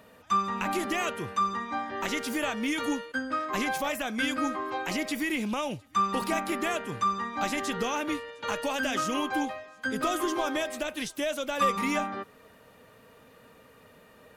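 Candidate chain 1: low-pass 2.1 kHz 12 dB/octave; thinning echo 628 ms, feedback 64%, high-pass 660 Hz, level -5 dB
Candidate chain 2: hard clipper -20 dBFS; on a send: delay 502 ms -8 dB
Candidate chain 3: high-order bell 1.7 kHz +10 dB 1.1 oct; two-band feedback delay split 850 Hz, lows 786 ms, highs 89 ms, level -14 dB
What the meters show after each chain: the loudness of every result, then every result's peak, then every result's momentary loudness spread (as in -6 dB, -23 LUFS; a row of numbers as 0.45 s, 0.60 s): -30.0 LUFS, -29.5 LUFS, -24.5 LUFS; -15.0 dBFS, -17.0 dBFS, -10.0 dBFS; 9 LU, 4 LU, 7 LU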